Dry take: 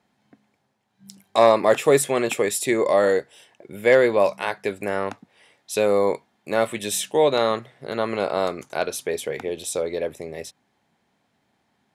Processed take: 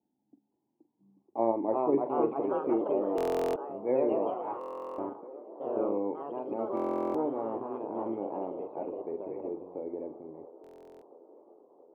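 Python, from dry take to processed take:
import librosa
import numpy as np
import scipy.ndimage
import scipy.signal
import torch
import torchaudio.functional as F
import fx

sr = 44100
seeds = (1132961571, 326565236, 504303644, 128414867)

p1 = fx.env_lowpass(x, sr, base_hz=680.0, full_db=-16.5)
p2 = fx.low_shelf(p1, sr, hz=340.0, db=-10.5)
p3 = fx.level_steps(p2, sr, step_db=17)
p4 = p2 + F.gain(torch.from_numpy(p3), -1.5).numpy()
p5 = fx.formant_cascade(p4, sr, vowel='u')
p6 = fx.echo_pitch(p5, sr, ms=511, semitones=2, count=3, db_per_echo=-3.0)
p7 = fx.doubler(p6, sr, ms=44.0, db=-12.0)
p8 = fx.echo_wet_bandpass(p7, sr, ms=677, feedback_pct=67, hz=630.0, wet_db=-16.0)
p9 = fx.buffer_glitch(p8, sr, at_s=(3.16, 4.59, 6.75, 10.62), block=1024, repeats=16)
y = F.gain(torch.from_numpy(p9), 2.0).numpy()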